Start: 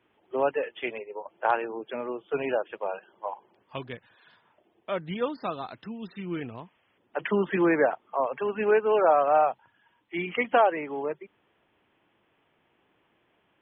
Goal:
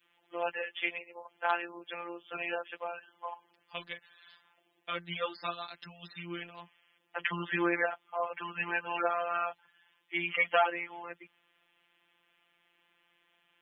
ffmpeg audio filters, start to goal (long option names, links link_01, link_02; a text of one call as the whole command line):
ffmpeg -i in.wav -af "adynamicequalizer=threshold=0.0141:dfrequency=800:dqfactor=1.4:tfrequency=800:tqfactor=1.4:attack=5:release=100:ratio=0.375:range=2:mode=cutabove:tftype=bell,afftfilt=real='hypot(re,im)*cos(PI*b)':imag='0':win_size=1024:overlap=0.75,tiltshelf=frequency=1100:gain=-9.5" out.wav